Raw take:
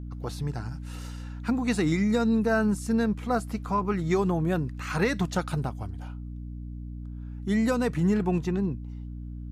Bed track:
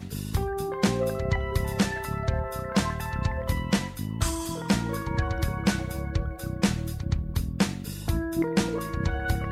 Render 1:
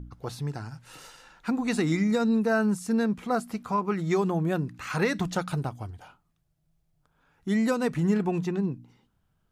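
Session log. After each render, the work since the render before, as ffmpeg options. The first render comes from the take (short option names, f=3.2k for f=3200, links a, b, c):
-af "bandreject=f=60:t=h:w=4,bandreject=f=120:t=h:w=4,bandreject=f=180:t=h:w=4,bandreject=f=240:t=h:w=4,bandreject=f=300:t=h:w=4"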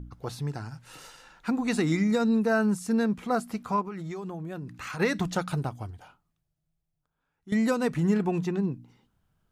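-filter_complex "[0:a]asplit=3[a][b][c];[a]afade=t=out:st=3.81:d=0.02[d];[b]acompressor=threshold=-33dB:ratio=8:attack=3.2:release=140:knee=1:detection=peak,afade=t=in:st=3.81:d=0.02,afade=t=out:st=4.99:d=0.02[e];[c]afade=t=in:st=4.99:d=0.02[f];[d][e][f]amix=inputs=3:normalize=0,asplit=2[g][h];[g]atrim=end=7.52,asetpts=PTS-STARTPTS,afade=t=out:st=5.82:d=1.7:c=qua:silence=0.188365[i];[h]atrim=start=7.52,asetpts=PTS-STARTPTS,afade=t=in:d=0.004:c=hsin:silence=0.188365[j];[i][j]concat=n=2:v=0:a=1"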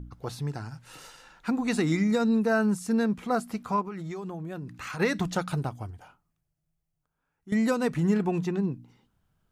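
-filter_complex "[0:a]asettb=1/sr,asplit=3[a][b][c];[a]atrim=end=5.794[d];[b]atrim=start=5.79:end=7.57,asetpts=PTS-STARTPTS,afade=t=in:d=0.004:c=qsin,afade=t=out:st=1.776:d=0.004:c=qsin,equalizer=f=3.8k:t=o:w=0.56:g=-6[e];[c]atrim=start=7.566[f];[d][e]acrossfade=d=0.004:c1=hsin:c2=qsin[g];[g][f]acrossfade=d=0.004:c1=qsin:c2=hsin"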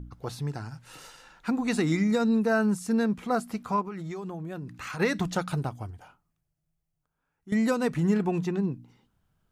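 -af anull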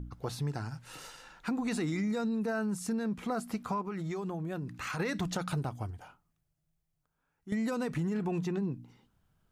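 -af "alimiter=limit=-21.5dB:level=0:latency=1:release=23,acompressor=threshold=-29dB:ratio=6"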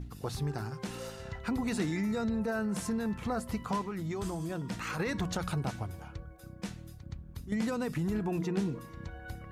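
-filter_complex "[1:a]volume=-16dB[a];[0:a][a]amix=inputs=2:normalize=0"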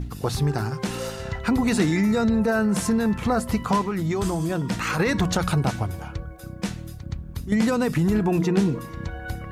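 -af "volume=11dB"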